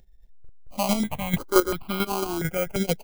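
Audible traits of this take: aliases and images of a low sample rate 1800 Hz, jitter 0%; chopped level 4.5 Hz, depth 60%, duty 20%; notches that jump at a steady rate 2.9 Hz 320–1800 Hz

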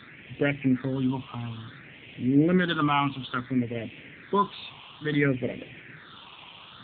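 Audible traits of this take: a quantiser's noise floor 6-bit, dither triangular; phasing stages 6, 0.58 Hz, lowest notch 450–1200 Hz; AMR-NB

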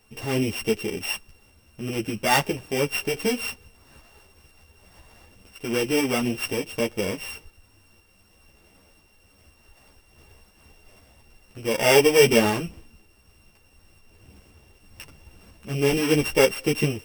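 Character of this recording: a buzz of ramps at a fixed pitch in blocks of 16 samples; tremolo saw up 2 Hz, depth 30%; a shimmering, thickened sound

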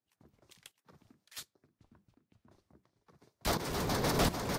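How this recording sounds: tremolo saw up 1.4 Hz, depth 80%; Vorbis

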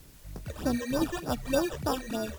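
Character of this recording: aliases and images of a low sample rate 2100 Hz, jitter 0%; phasing stages 12, 3.3 Hz, lowest notch 230–3100 Hz; a quantiser's noise floor 10-bit, dither triangular; MP3

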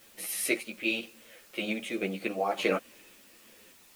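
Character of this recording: random-step tremolo, depth 65%; a quantiser's noise floor 10-bit, dither triangular; a shimmering, thickened sound

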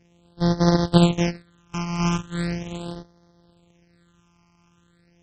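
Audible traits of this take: a buzz of ramps at a fixed pitch in blocks of 256 samples; phasing stages 8, 0.39 Hz, lowest notch 500–2600 Hz; MP3

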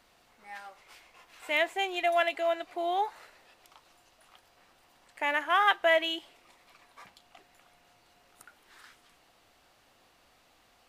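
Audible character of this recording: noise floor -65 dBFS; spectral tilt -2.0 dB/oct

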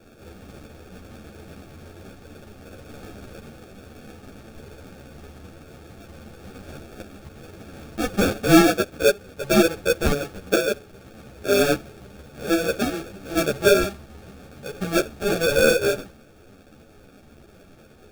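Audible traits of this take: aliases and images of a low sample rate 1000 Hz, jitter 0%; a shimmering, thickened sound

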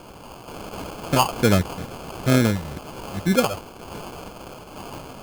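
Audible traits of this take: a quantiser's noise floor 6-bit, dither triangular; random-step tremolo 2.1 Hz; phasing stages 4, 2.2 Hz, lowest notch 280–4600 Hz; aliases and images of a low sample rate 1900 Hz, jitter 0%

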